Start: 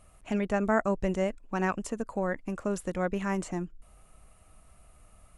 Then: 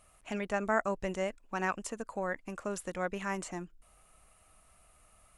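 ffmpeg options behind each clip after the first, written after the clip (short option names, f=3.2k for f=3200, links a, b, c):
-af "lowshelf=f=490:g=-10"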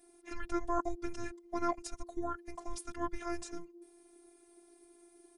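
-af "afreqshift=-420,aecho=1:1:2.7:0.91,afftfilt=real='hypot(re,im)*cos(PI*b)':imag='0':win_size=512:overlap=0.75,volume=-1dB"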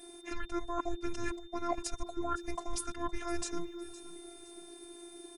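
-af "areverse,acompressor=threshold=-41dB:ratio=10,areverse,aeval=exprs='val(0)+0.000398*sin(2*PI*3600*n/s)':c=same,aecho=1:1:513|1026|1539:0.141|0.048|0.0163,volume=11dB"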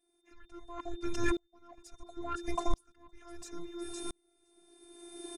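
-af "asoftclip=type=tanh:threshold=-25dB,aresample=32000,aresample=44100,aeval=exprs='val(0)*pow(10,-39*if(lt(mod(-0.73*n/s,1),2*abs(-0.73)/1000),1-mod(-0.73*n/s,1)/(2*abs(-0.73)/1000),(mod(-0.73*n/s,1)-2*abs(-0.73)/1000)/(1-2*abs(-0.73)/1000))/20)':c=same,volume=11dB"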